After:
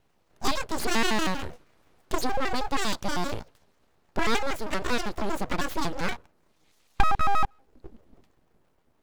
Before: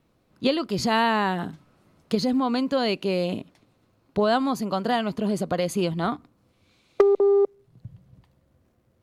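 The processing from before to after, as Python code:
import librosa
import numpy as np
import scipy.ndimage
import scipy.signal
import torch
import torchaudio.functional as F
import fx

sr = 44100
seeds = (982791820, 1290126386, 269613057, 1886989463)

y = fx.pitch_trill(x, sr, semitones=8.0, every_ms=79)
y = np.abs(y)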